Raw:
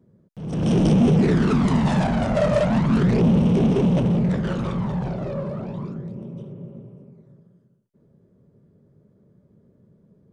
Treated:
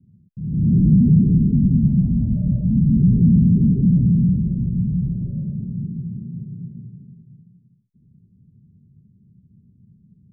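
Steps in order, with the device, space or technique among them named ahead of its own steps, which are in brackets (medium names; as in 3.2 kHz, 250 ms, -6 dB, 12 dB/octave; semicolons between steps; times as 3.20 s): the neighbour's flat through the wall (low-pass 220 Hz 24 dB/octave; peaking EQ 88 Hz +4.5 dB 0.85 oct); trim +4.5 dB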